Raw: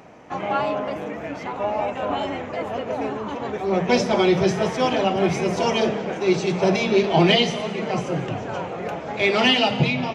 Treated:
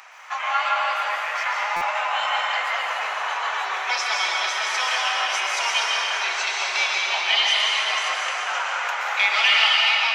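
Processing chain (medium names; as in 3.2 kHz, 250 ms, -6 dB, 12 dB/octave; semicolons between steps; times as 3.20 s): compression, threshold -23 dBFS, peak gain reduction 10.5 dB; high-pass 1.1 kHz 24 dB/octave; plate-style reverb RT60 3.4 s, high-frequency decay 0.65×, pre-delay 110 ms, DRR -3 dB; buffer glitch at 1.76 s, samples 256, times 8; trim +9 dB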